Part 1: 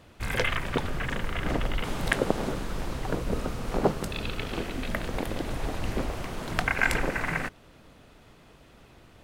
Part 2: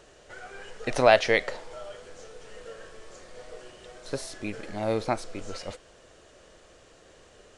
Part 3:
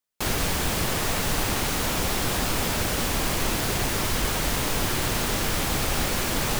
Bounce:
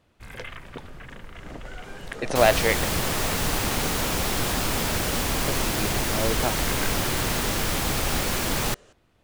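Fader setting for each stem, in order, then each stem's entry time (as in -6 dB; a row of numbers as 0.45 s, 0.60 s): -11.0 dB, -0.5 dB, 0.0 dB; 0.00 s, 1.35 s, 2.15 s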